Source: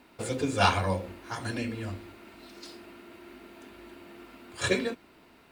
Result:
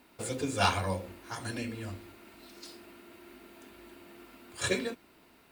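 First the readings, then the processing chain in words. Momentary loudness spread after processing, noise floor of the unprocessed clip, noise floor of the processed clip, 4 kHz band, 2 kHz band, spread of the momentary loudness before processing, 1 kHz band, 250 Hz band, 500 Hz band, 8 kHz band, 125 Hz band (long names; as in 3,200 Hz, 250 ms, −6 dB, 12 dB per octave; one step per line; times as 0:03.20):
24 LU, −58 dBFS, −61 dBFS, −2.0 dB, −3.5 dB, 24 LU, −4.0 dB, −4.0 dB, −4.0 dB, +1.0 dB, −4.0 dB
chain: high-shelf EQ 7,400 Hz +9.5 dB
level −4 dB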